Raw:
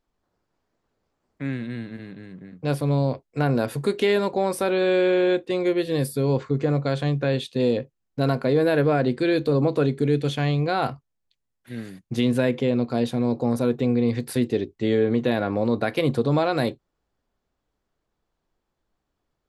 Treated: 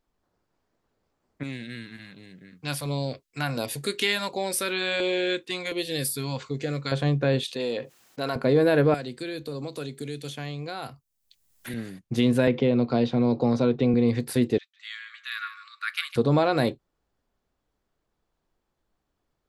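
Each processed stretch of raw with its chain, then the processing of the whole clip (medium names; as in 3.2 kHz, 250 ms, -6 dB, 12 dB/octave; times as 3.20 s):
1.43–6.92 s: tilt shelf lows -8 dB, about 1.4 kHz + LFO notch saw down 1.4 Hz 320–1900 Hz
7.43–8.36 s: high-pass 1 kHz 6 dB/octave + level flattener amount 50%
8.94–11.74 s: pre-emphasis filter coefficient 0.8 + three bands compressed up and down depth 100%
12.47–13.94 s: low-pass 5.3 kHz 24 dB/octave + band-stop 1.7 kHz, Q 15 + three bands compressed up and down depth 70%
14.58–16.16 s: brick-wall FIR high-pass 1.1 kHz + delay 154 ms -11.5 dB + three bands expanded up and down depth 40%
whole clip: none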